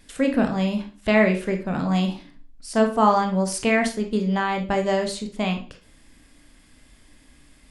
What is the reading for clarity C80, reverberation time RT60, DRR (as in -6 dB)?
16.0 dB, 0.40 s, 4.0 dB